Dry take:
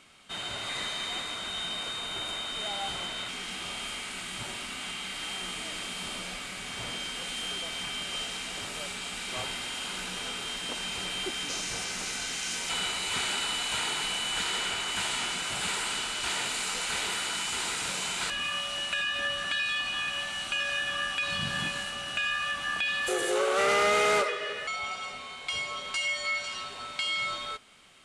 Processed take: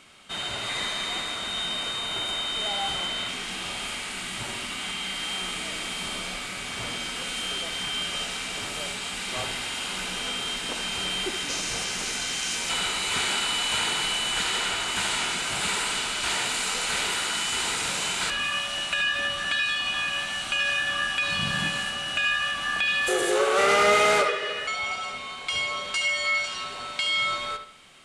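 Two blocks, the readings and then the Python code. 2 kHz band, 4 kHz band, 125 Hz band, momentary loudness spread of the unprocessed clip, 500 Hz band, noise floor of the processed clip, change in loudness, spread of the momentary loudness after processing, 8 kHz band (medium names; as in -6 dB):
+4.5 dB, +4.5 dB, +4.5 dB, 7 LU, +4.0 dB, -35 dBFS, +4.5 dB, 8 LU, +4.0 dB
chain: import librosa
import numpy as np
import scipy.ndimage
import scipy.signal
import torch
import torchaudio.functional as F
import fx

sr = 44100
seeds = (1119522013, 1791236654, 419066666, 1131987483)

y = fx.echo_bbd(x, sr, ms=73, stages=2048, feedback_pct=36, wet_db=-9)
y = np.clip(y, -10.0 ** (-17.5 / 20.0), 10.0 ** (-17.5 / 20.0))
y = y * 10.0 ** (4.0 / 20.0)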